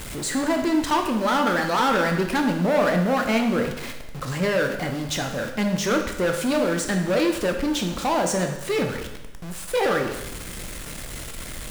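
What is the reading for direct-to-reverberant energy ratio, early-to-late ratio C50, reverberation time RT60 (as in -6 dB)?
3.5 dB, 6.5 dB, 0.95 s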